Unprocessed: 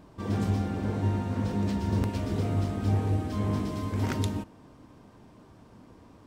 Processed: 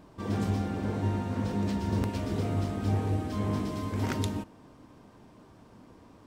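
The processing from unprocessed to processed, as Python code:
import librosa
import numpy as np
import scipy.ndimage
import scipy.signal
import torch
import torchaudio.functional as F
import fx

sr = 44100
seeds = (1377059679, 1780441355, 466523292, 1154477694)

y = fx.peak_eq(x, sr, hz=68.0, db=-3.0, octaves=2.6)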